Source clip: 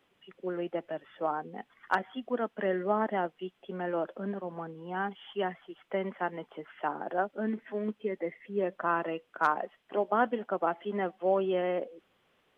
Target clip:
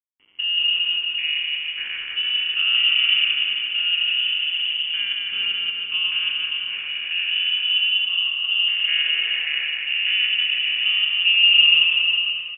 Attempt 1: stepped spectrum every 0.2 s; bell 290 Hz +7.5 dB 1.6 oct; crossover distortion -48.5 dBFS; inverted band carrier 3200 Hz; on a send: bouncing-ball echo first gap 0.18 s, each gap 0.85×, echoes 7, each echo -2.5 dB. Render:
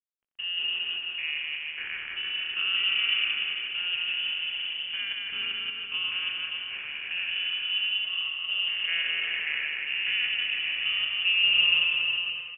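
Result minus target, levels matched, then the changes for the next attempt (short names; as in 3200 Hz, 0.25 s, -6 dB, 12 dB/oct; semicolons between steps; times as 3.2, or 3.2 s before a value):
250 Hz band +7.0 dB
change: bell 290 Hz +19 dB 1.6 oct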